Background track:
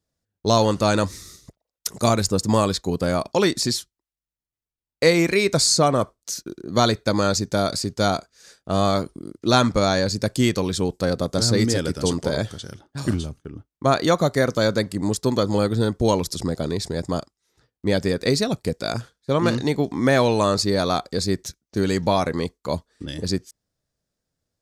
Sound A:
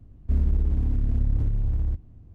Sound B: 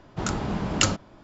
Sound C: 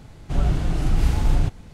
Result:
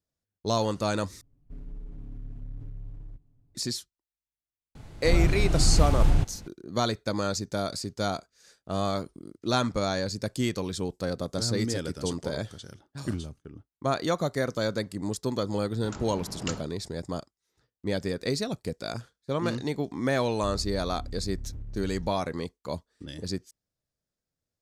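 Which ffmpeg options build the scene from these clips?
-filter_complex "[1:a]asplit=2[s0][s1];[0:a]volume=0.376[s2];[s0]aecho=1:1:7.1:0.98[s3];[s2]asplit=2[s4][s5];[s4]atrim=end=1.214[s6];[s3]atrim=end=2.34,asetpts=PTS-STARTPTS,volume=0.126[s7];[s5]atrim=start=3.546[s8];[3:a]atrim=end=1.73,asetpts=PTS-STARTPTS,volume=0.794,afade=t=in:d=0.004:c=hsin,afade=t=out:st=1.726:d=0.004:c=hsin,adelay=4750[s9];[2:a]atrim=end=1.23,asetpts=PTS-STARTPTS,volume=0.224,afade=t=in:d=0.004:c=hsin,afade=t=out:st=1.226:d=0.004:c=hsin,adelay=15660[s10];[s1]atrim=end=2.34,asetpts=PTS-STARTPTS,volume=0.178,afade=t=in:d=0.004:c=hsin,afade=t=out:st=2.336:d=0.004:c=hsin,adelay=20140[s11];[s6][s7]acrossfade=d=0.004:c1=hsin:c2=hsin[s12];[s12][s8]acrossfade=d=0.004:c1=hsin:c2=hsin[s13];[s13][s9][s10][s11]amix=inputs=4:normalize=0"

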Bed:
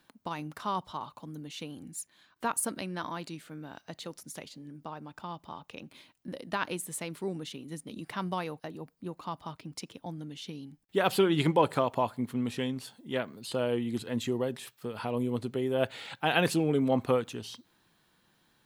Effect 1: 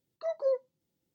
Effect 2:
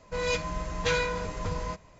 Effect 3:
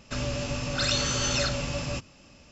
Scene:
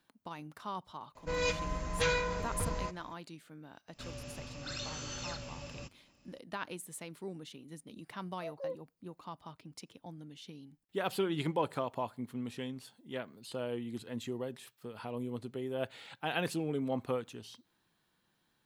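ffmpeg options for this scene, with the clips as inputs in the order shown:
-filter_complex "[0:a]volume=0.398[s0];[2:a]atrim=end=1.99,asetpts=PTS-STARTPTS,volume=0.668,afade=t=in:d=0.004:c=hsin,afade=t=out:st=1.986:d=0.004:c=hsin,adelay=1150[s1];[3:a]atrim=end=2.51,asetpts=PTS-STARTPTS,volume=0.178,afade=t=in:d=0.004:c=hsin,afade=t=out:st=2.506:d=0.004:c=hsin,adelay=3880[s2];[1:a]atrim=end=1.14,asetpts=PTS-STARTPTS,volume=0.282,afade=t=in:d=0.004:c=hsin,afade=t=out:st=1.136:d=0.004:c=hsin,adelay=360738S[s3];[s0][s1][s2][s3]amix=inputs=4:normalize=0"

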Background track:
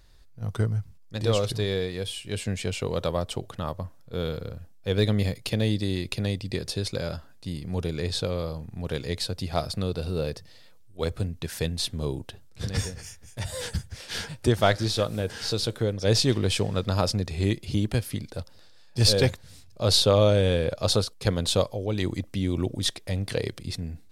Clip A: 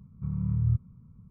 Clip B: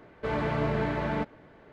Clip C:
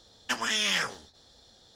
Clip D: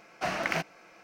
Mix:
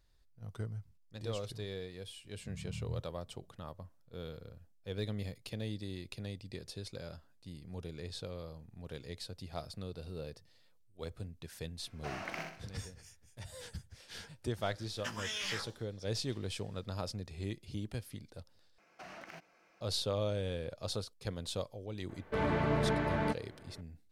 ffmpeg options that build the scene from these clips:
-filter_complex "[4:a]asplit=2[s0][s1];[0:a]volume=0.178[s2];[s0]aecho=1:1:63|126|189|252|315:0.668|0.281|0.118|0.0495|0.0208[s3];[3:a]asplit=2[s4][s5];[s5]adelay=17,volume=0.708[s6];[s4][s6]amix=inputs=2:normalize=0[s7];[s1]acompressor=threshold=0.0224:ratio=6:attack=3.2:release=140:knee=1:detection=peak[s8];[s2]asplit=2[s9][s10];[s9]atrim=end=18.784[s11];[s8]atrim=end=1.03,asetpts=PTS-STARTPTS,volume=0.237[s12];[s10]atrim=start=19.806[s13];[1:a]atrim=end=1.3,asetpts=PTS-STARTPTS,volume=0.178,afade=t=in:d=0.004:c=hsin,afade=t=out:st=1.296:d=0.004:c=hsin,adelay=2240[s14];[s3]atrim=end=1.03,asetpts=PTS-STARTPTS,volume=0.224,afade=t=in:d=0.004:c=hsin,afade=t=out:st=1.026:d=0.004:c=hsin,adelay=11820[s15];[s7]atrim=end=1.75,asetpts=PTS-STARTPTS,volume=0.211,afade=t=in:d=0.004:c=hsin,afade=t=out:st=1.746:d=0.004:c=hsin,adelay=14750[s16];[2:a]atrim=end=1.72,asetpts=PTS-STARTPTS,volume=0.708,afade=t=in:d=0.004:c=hsin,afade=t=out:st=1.716:d=0.004:c=hsin,adelay=22090[s17];[s11][s12]acrossfade=d=0.004:c1=hsin:c2=hsin[s18];[s18][s13]acrossfade=d=0.004:c1=hsin:c2=hsin[s19];[s19][s14][s15][s16][s17]amix=inputs=5:normalize=0"

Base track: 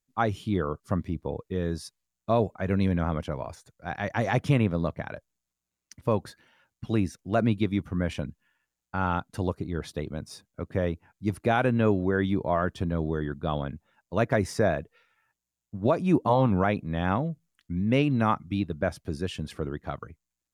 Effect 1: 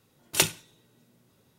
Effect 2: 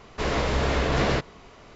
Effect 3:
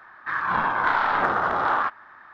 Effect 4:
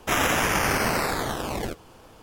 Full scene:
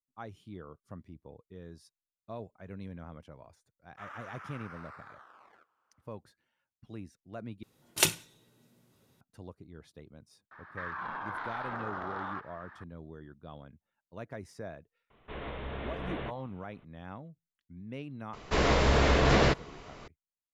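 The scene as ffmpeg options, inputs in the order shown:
-filter_complex "[2:a]asplit=2[s0][s1];[0:a]volume=0.119[s2];[4:a]bandpass=f=1300:t=q:w=3.6:csg=0[s3];[1:a]aresample=32000,aresample=44100[s4];[3:a]acompressor=threshold=0.0224:ratio=4:attack=8.1:release=97:knee=1:detection=peak[s5];[s0]aresample=8000,aresample=44100[s6];[s2]asplit=2[s7][s8];[s7]atrim=end=7.634[s9];[s4]atrim=end=1.58,asetpts=PTS-STARTPTS,volume=0.75[s10];[s8]atrim=start=9.206[s11];[s3]atrim=end=2.22,asetpts=PTS-STARTPTS,volume=0.141,afade=t=in:d=0.004:c=hsin,afade=t=out:st=2.216:d=0.004:c=hsin,adelay=3900[s12];[s5]atrim=end=2.33,asetpts=PTS-STARTPTS,volume=0.531,afade=t=in:d=0.004:c=hsin,afade=t=out:st=2.326:d=0.004:c=hsin,adelay=10510[s13];[s6]atrim=end=1.75,asetpts=PTS-STARTPTS,volume=0.178,afade=t=in:d=0.004:c=hsin,afade=t=out:st=1.746:d=0.004:c=hsin,adelay=15100[s14];[s1]atrim=end=1.75,asetpts=PTS-STARTPTS,afade=t=in:d=0.004:c=hsin,afade=t=out:st=1.746:d=0.004:c=hsin,adelay=18330[s15];[s9][s10]acrossfade=d=0.004:c1=hsin:c2=hsin[s16];[s16][s11]acrossfade=d=0.004:c1=hsin:c2=hsin[s17];[s17][s12][s13][s14][s15]amix=inputs=5:normalize=0"

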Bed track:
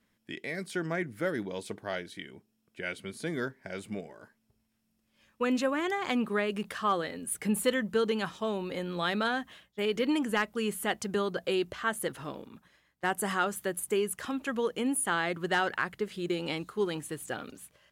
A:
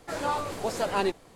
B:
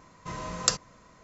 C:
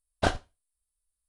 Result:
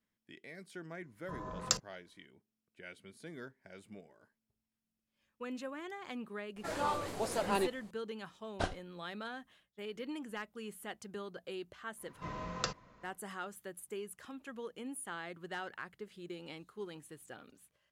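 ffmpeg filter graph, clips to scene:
-filter_complex "[2:a]asplit=2[s0][s1];[0:a]volume=0.2[s2];[s0]afwtdn=0.0112[s3];[s1]lowpass=3500[s4];[s3]atrim=end=1.23,asetpts=PTS-STARTPTS,volume=0.447,afade=t=in:d=0.004:c=hsin,afade=t=out:st=1.226:d=0.004:c=hsin,adelay=1030[s5];[1:a]atrim=end=1.35,asetpts=PTS-STARTPTS,volume=0.501,afade=t=in:d=0.004:c=hsin,afade=t=out:st=1.346:d=0.004:c=hsin,adelay=6560[s6];[3:a]atrim=end=1.28,asetpts=PTS-STARTPTS,volume=0.316,afade=t=in:d=0.004:c=hsin,afade=t=out:st=1.276:d=0.004:c=hsin,adelay=8370[s7];[s4]atrim=end=1.23,asetpts=PTS-STARTPTS,volume=0.531,afade=t=in:d=0.1,afade=t=out:st=1.13:d=0.1,adelay=11960[s8];[s2][s5][s6][s7][s8]amix=inputs=5:normalize=0"

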